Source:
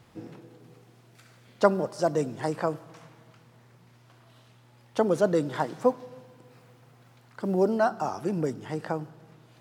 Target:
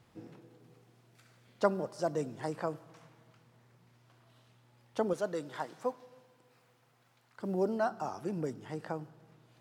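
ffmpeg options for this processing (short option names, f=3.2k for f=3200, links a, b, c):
-filter_complex "[0:a]asettb=1/sr,asplit=3[a][b][c];[a]atrim=end=5.134[d];[b]atrim=start=5.13:end=7.4,asetpts=PTS-STARTPTS,afade=t=in:d=0.004:c=qsin,afade=t=out:st=2.266:d=0.004:c=qsin,lowshelf=f=440:g=-9.5[e];[c]atrim=start=7.396[f];[d][e]acrossfade=d=0.004:c1=hsin:c2=qsin[g];[g][f]acrossfade=d=0.004:c1=qsin:c2=hsin,volume=-7.5dB"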